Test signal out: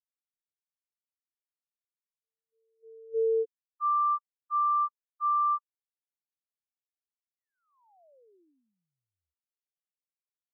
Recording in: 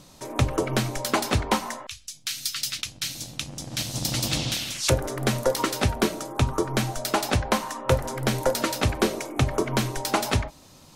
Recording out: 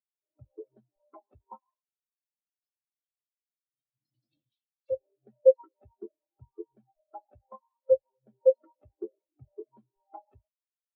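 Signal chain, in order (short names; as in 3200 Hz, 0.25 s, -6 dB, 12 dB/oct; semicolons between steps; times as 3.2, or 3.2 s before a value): low-pass opened by the level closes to 330 Hz, open at -21.5 dBFS; tone controls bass -10 dB, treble -2 dB; spectral expander 4:1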